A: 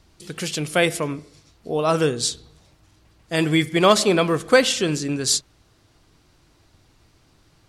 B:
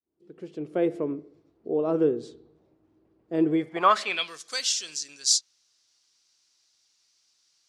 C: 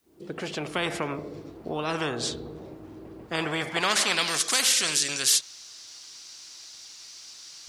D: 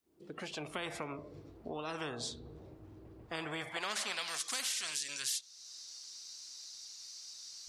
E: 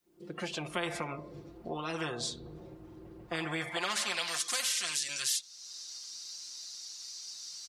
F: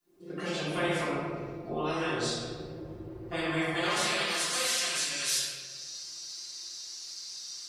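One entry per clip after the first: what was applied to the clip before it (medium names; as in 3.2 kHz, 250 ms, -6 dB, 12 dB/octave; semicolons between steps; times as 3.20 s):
fade-in on the opening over 0.95 s; band-pass sweep 360 Hz -> 5.7 kHz, 3.48–4.39 s; trim +2 dB
spectrum-flattening compressor 4:1
spectral noise reduction 9 dB; compression 2:1, threshold -39 dBFS, peak gain reduction 12 dB; trim -3.5 dB
comb 5.7 ms, depth 67%; trim +3 dB
reverberation RT60 1.8 s, pre-delay 3 ms, DRR -10.5 dB; trim -6 dB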